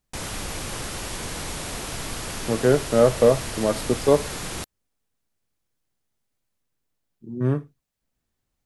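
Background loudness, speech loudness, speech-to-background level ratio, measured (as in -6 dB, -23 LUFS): -31.5 LUFS, -22.0 LUFS, 9.5 dB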